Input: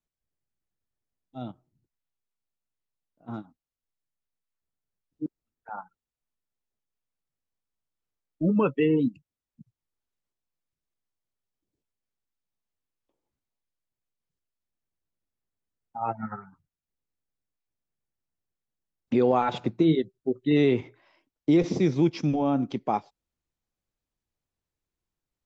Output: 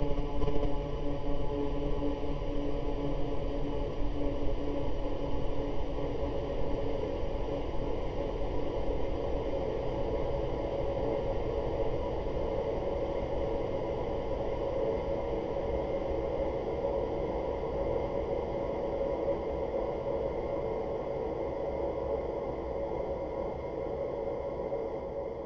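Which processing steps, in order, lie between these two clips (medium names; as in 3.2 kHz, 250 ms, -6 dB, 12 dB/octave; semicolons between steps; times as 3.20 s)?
steep high-pass 180 Hz; Paulstretch 49×, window 1.00 s, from 22.59 s; in parallel at +2 dB: level held to a coarse grid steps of 23 dB; on the sum: frequency shift -280 Hz; on a send: reverse echo 453 ms -4 dB; on the sum: three bands expanded up and down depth 40%; trim -5.5 dB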